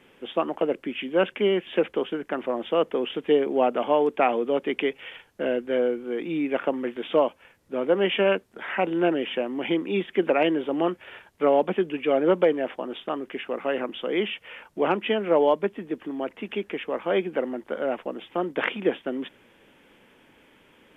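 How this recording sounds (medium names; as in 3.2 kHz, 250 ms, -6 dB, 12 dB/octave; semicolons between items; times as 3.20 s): noise floor -58 dBFS; spectral tilt -3.5 dB/octave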